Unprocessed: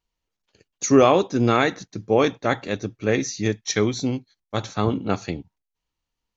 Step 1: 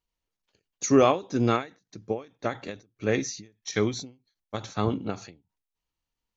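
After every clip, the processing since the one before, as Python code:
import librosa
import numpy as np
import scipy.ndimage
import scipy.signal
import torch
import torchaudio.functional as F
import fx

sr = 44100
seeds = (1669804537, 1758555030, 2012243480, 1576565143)

y = fx.end_taper(x, sr, db_per_s=190.0)
y = F.gain(torch.from_numpy(y), -4.0).numpy()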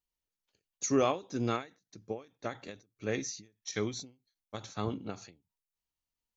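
y = fx.high_shelf(x, sr, hz=5200.0, db=7.5)
y = F.gain(torch.from_numpy(y), -8.5).numpy()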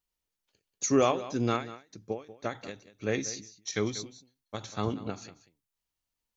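y = x + 10.0 ** (-15.5 / 20.0) * np.pad(x, (int(188 * sr / 1000.0), 0))[:len(x)]
y = F.gain(torch.from_numpy(y), 3.5).numpy()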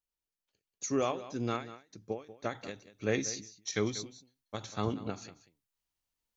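y = fx.rider(x, sr, range_db=5, speed_s=2.0)
y = F.gain(torch.from_numpy(y), -3.0).numpy()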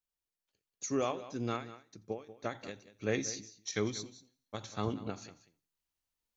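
y = fx.echo_feedback(x, sr, ms=85, feedback_pct=52, wet_db=-24.0)
y = F.gain(torch.from_numpy(y), -2.0).numpy()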